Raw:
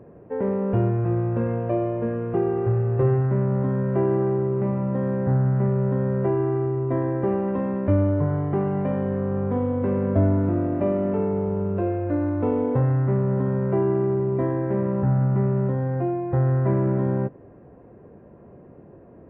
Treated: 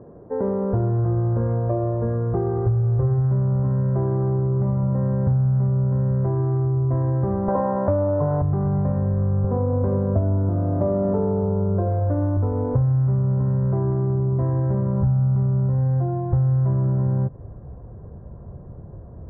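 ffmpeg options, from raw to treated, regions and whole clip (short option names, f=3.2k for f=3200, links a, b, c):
-filter_complex "[0:a]asettb=1/sr,asplit=3[a][b][c];[a]atrim=end=7.484[d];[b]atrim=start=7.48:end=8.42,asetpts=PTS-STARTPTS,afade=t=in:d=0.004:c=qsin,afade=t=out:st=0.936:d=0.004:c=qsin,highpass=f=270:p=1,equalizer=f=750:t=o:w=2.4:g=13,asplit=2[e][f];[f]adelay=14,volume=-8dB[g];[e][g]amix=inputs=2:normalize=0,atrim=end_sample=41454[h];[c]atrim=start=8.416[i];[d][h]acrossfade=d=0.004:c1=hsin:c2=qsin[j];[j][i]acrossfade=d=0.004:c1=qsin:c2=hsin,asettb=1/sr,asplit=3[k][l][m];[k]atrim=end=9.444[n];[l]atrim=start=9.44:end=12.37,asetpts=PTS-STARTPTS,afade=t=in:d=0.004:c=qsin,afade=t=out:st=2.926:d=0.004:c=qsin,highpass=59,equalizer=f=410:w=0.43:g=7,bandreject=f=50:t=h:w=6,bandreject=f=100:t=h:w=6,bandreject=f=150:t=h:w=6,bandreject=f=200:t=h:w=6,bandreject=f=250:t=h:w=6,bandreject=f=300:t=h:w=6,bandreject=f=350:t=h:w=6,bandreject=f=400:t=h:w=6[o];[m]atrim=start=12.366[p];[n][o]acrossfade=d=0.004:c1=hsin:c2=qsin[q];[q][p]acrossfade=d=0.004:c1=qsin:c2=hsin,lowpass=f=1.4k:w=0.5412,lowpass=f=1.4k:w=1.3066,asubboost=boost=11:cutoff=86,acompressor=threshold=-21dB:ratio=5,volume=3dB"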